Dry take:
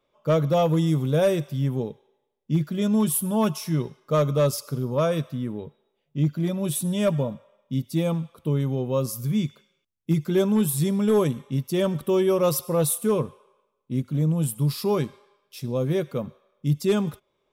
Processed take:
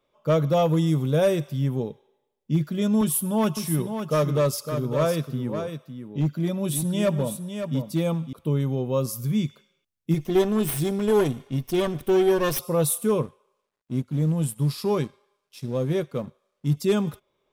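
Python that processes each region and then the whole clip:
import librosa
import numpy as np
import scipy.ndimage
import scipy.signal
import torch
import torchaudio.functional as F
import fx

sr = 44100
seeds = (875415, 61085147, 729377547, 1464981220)

y = fx.chain(x, sr, fx.highpass(hz=100.0, slope=12),
    fx.overload_stage(gain_db=16.5),
    fx.echo_single(ms=557, db=-8.0), at=(3.01, 8.33))
y = fx.chain(y, sr, fx.lower_of_two(delay_ms=0.34),
    fx.comb(ms=2.8, depth=0.33), at=(10.14, 12.59))
y = fx.chain(y, sr, fx.law_mismatch(coded='A'),
    fx.lowpass(hz=12000.0, slope=12), at=(13.22, 16.77))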